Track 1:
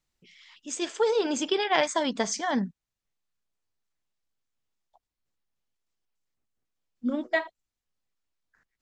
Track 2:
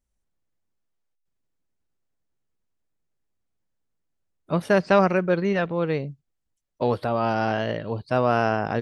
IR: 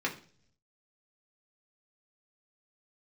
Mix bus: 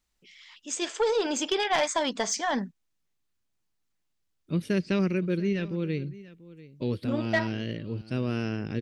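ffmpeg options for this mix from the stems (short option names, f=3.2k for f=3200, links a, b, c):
-filter_complex "[0:a]highpass=f=370:p=1,asoftclip=type=tanh:threshold=-19dB,volume=2.5dB[a];[1:a]firequalizer=gain_entry='entry(340,0);entry(700,-22);entry(2300,-2)':delay=0.05:min_phase=1,volume=-2dB,asplit=2[b][c];[c]volume=-18.5dB,aecho=0:1:690:1[d];[a][b][d]amix=inputs=3:normalize=0"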